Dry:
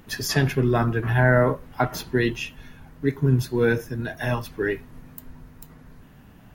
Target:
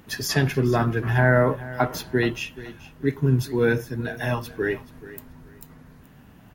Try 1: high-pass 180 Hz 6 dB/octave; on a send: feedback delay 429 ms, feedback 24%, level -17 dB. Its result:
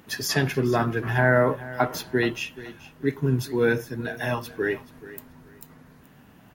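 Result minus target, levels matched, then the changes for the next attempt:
125 Hz band -3.0 dB
change: high-pass 49 Hz 6 dB/octave

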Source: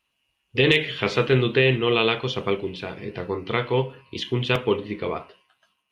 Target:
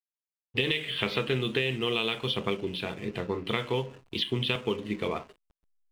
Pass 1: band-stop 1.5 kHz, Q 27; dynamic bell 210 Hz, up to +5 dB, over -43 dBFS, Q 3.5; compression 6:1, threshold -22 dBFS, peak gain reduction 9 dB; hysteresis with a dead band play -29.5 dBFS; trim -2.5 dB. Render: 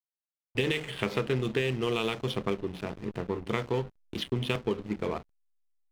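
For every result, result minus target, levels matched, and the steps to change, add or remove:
hysteresis with a dead band: distortion +10 dB; 4 kHz band -5.0 dB
change: hysteresis with a dead band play -40.5 dBFS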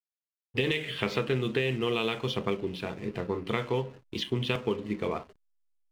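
4 kHz band -4.0 dB
add after dynamic bell: resonant low-pass 3.6 kHz, resonance Q 2.2

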